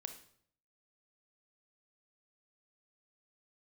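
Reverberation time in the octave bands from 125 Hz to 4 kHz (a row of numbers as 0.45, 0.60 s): 0.80, 0.70, 0.65, 0.60, 0.55, 0.50 s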